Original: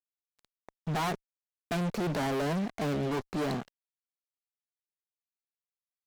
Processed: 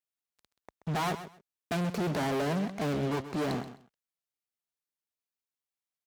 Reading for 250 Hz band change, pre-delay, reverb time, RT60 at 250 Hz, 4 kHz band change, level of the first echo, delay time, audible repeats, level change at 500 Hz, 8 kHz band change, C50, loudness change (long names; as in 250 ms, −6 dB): 0.0 dB, no reverb audible, no reverb audible, no reverb audible, +0.5 dB, −12.5 dB, 130 ms, 2, 0.0 dB, 0.0 dB, no reverb audible, 0.0 dB